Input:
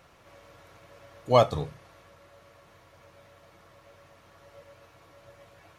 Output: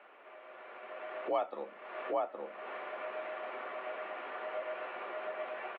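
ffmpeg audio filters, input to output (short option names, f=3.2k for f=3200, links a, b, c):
-filter_complex "[0:a]asplit=2[a][b];[b]adelay=816.3,volume=-9dB,highshelf=f=4k:g=-18.4[c];[a][c]amix=inputs=2:normalize=0,acompressor=threshold=-49dB:ratio=4,highpass=f=270:t=q:w=0.5412,highpass=f=270:t=q:w=1.307,lowpass=f=2.8k:t=q:w=0.5176,lowpass=f=2.8k:t=q:w=0.7071,lowpass=f=2.8k:t=q:w=1.932,afreqshift=58,dynaudnorm=f=420:g=5:m=13.5dB,volume=1.5dB"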